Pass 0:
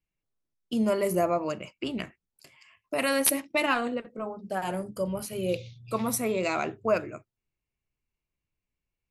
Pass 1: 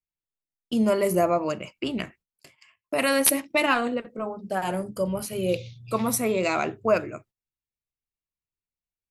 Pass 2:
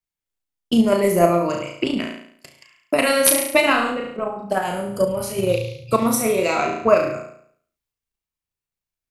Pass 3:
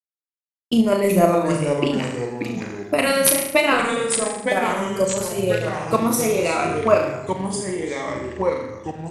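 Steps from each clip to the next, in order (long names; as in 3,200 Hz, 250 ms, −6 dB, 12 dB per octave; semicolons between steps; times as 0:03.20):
noise gate −56 dBFS, range −16 dB; level +3.5 dB
flutter between parallel walls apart 6 metres, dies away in 0.6 s; transient designer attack +8 dB, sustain +4 dB; level +1 dB
bit-depth reduction 12 bits, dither none; delay with pitch and tempo change per echo 239 ms, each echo −3 semitones, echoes 3, each echo −6 dB; level −1 dB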